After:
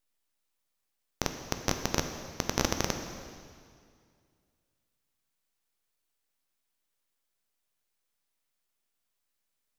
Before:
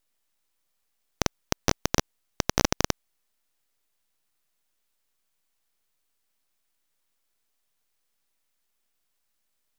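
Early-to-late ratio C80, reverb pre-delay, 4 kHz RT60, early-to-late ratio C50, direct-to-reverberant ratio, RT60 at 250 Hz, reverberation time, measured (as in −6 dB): 8.0 dB, 9 ms, 2.0 s, 7.0 dB, 5.5 dB, 2.3 s, 2.2 s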